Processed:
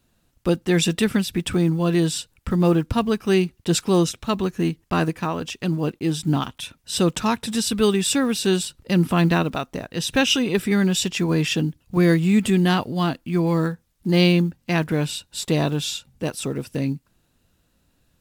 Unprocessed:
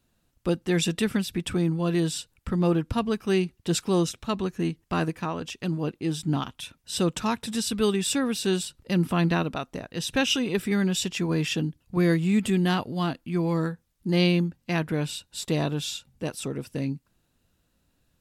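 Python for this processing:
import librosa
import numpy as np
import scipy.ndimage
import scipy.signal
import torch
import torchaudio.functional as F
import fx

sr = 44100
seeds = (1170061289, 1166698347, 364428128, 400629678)

y = fx.block_float(x, sr, bits=7)
y = y * librosa.db_to_amplitude(5.0)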